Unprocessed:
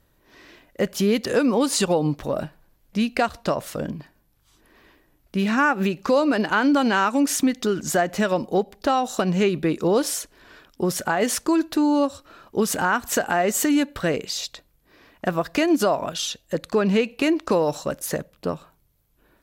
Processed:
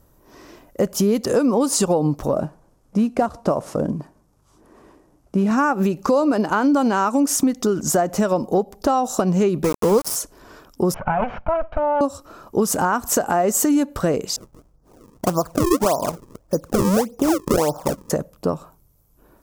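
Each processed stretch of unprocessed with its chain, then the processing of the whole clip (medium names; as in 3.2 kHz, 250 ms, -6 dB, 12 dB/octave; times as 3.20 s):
2.35–5.51 s: CVSD coder 64 kbps + high-pass 360 Hz 6 dB/octave + tilt EQ -3 dB/octave
9.64–10.16 s: rippled EQ curve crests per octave 0.88, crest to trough 10 dB + small samples zeroed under -22 dBFS
10.94–12.01 s: comb filter that takes the minimum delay 1.3 ms + elliptic low-pass 2.7 kHz, stop band 80 dB + peaking EQ 310 Hz -13.5 dB 0.43 oct
14.36–18.10 s: low-pass 1.6 kHz 24 dB/octave + decimation with a swept rate 35×, swing 160% 1.7 Hz
whole clip: high-order bell 2.6 kHz -10.5 dB; compression 2:1, threshold -26 dBFS; trim +7.5 dB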